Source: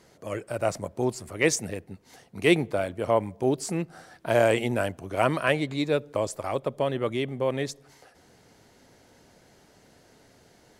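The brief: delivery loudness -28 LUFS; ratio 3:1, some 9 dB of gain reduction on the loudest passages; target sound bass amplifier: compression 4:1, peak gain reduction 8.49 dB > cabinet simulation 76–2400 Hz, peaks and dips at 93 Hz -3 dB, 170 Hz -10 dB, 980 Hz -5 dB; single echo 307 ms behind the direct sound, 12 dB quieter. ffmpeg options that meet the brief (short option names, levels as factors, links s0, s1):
-af "acompressor=threshold=0.0398:ratio=3,aecho=1:1:307:0.251,acompressor=threshold=0.0224:ratio=4,highpass=f=76:w=0.5412,highpass=f=76:w=1.3066,equalizer=f=93:t=q:w=4:g=-3,equalizer=f=170:t=q:w=4:g=-10,equalizer=f=980:t=q:w=4:g=-5,lowpass=f=2400:w=0.5412,lowpass=f=2400:w=1.3066,volume=3.76"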